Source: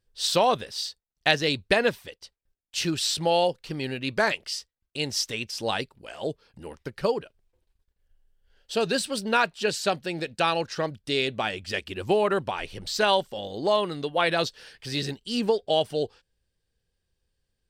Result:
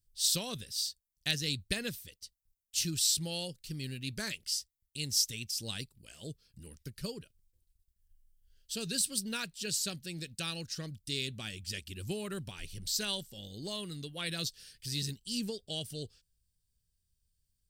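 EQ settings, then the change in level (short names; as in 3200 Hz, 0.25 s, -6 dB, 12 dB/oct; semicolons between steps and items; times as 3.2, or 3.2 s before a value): tone controls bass +15 dB, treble +6 dB; pre-emphasis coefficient 0.8; bell 820 Hz -11.5 dB 1.2 oct; -2.5 dB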